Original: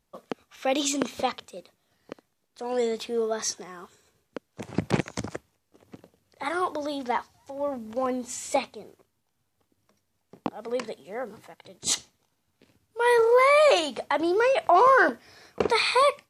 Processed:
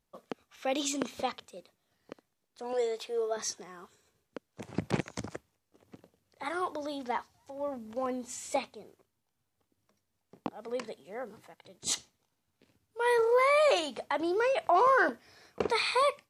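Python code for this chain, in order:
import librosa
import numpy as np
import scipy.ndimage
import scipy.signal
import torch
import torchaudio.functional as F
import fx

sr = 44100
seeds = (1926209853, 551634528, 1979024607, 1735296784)

y = fx.low_shelf_res(x, sr, hz=340.0, db=-10.5, q=1.5, at=(2.73, 3.37))
y = y * librosa.db_to_amplitude(-6.0)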